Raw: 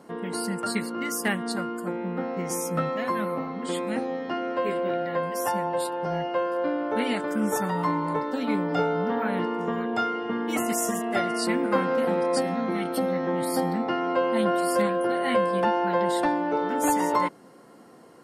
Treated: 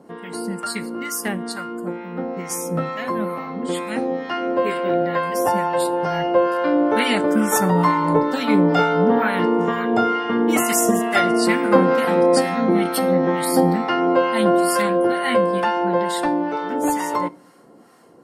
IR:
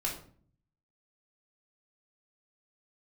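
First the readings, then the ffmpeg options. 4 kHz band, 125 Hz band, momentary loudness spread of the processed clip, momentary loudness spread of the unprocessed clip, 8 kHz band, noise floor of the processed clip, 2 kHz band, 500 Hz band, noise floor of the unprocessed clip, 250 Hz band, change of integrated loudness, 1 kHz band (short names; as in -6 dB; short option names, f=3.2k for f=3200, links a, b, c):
+7.0 dB, +7.5 dB, 10 LU, 6 LU, +7.0 dB, -47 dBFS, +7.0 dB, +6.5 dB, -50 dBFS, +7.5 dB, +7.0 dB, +6.0 dB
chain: -filter_complex "[0:a]dynaudnorm=f=820:g=11:m=9.5dB,acrossover=split=850[a][b];[a]aeval=exprs='val(0)*(1-0.7/2+0.7/2*cos(2*PI*2.2*n/s))':c=same[c];[b]aeval=exprs='val(0)*(1-0.7/2-0.7/2*cos(2*PI*2.2*n/s))':c=same[d];[c][d]amix=inputs=2:normalize=0,asplit=2[e][f];[1:a]atrim=start_sample=2205,highshelf=f=4.9k:g=10.5[g];[f][g]afir=irnorm=-1:irlink=0,volume=-21.5dB[h];[e][h]amix=inputs=2:normalize=0,volume=3.5dB"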